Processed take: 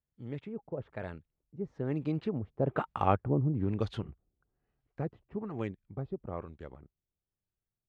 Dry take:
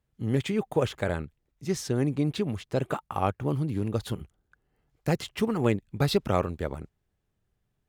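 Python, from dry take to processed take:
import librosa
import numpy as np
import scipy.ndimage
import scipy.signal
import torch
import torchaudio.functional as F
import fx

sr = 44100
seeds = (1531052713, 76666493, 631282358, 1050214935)

y = fx.doppler_pass(x, sr, speed_mps=19, closest_m=12.0, pass_at_s=3.15)
y = fx.filter_lfo_lowpass(y, sr, shape='sine', hz=1.1, low_hz=550.0, high_hz=4100.0, q=0.79)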